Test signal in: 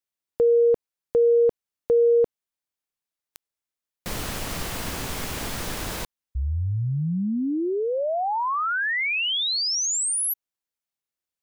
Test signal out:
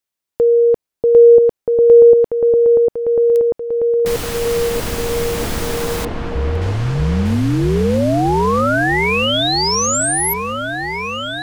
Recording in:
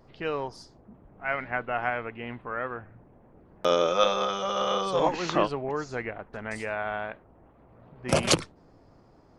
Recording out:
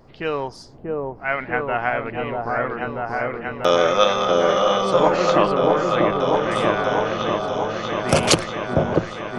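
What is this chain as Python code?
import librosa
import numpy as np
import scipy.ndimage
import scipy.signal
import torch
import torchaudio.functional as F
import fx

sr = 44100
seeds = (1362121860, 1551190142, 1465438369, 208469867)

y = fx.echo_opening(x, sr, ms=639, hz=750, octaves=1, feedback_pct=70, wet_db=0)
y = y * 10.0 ** (6.0 / 20.0)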